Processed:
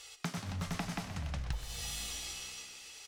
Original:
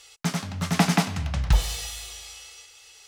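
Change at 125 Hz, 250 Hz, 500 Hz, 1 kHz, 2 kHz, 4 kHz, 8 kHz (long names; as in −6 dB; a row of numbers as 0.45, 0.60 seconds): −13.5, −15.5, −14.0, −14.5, −12.0, −9.5, −8.0 decibels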